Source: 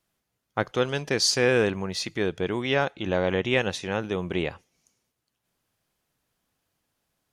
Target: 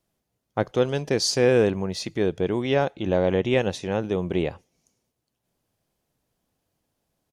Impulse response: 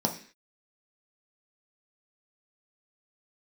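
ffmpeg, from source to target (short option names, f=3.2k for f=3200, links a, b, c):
-af "firequalizer=gain_entry='entry(610,0);entry(1300,-8);entry(5300,-5)':delay=0.05:min_phase=1,volume=3.5dB"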